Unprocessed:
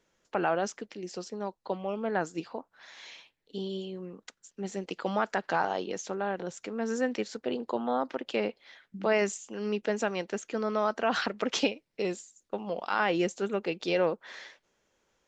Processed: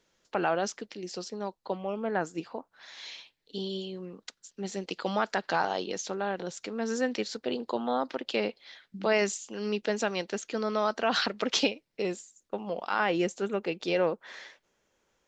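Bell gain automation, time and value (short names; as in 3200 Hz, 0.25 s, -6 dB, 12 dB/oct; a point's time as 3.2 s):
bell 4300 Hz 1 oct
1.41 s +6 dB
1.91 s -2 dB
2.44 s -2 dB
3.07 s +8 dB
11.41 s +8 dB
12.09 s -0.5 dB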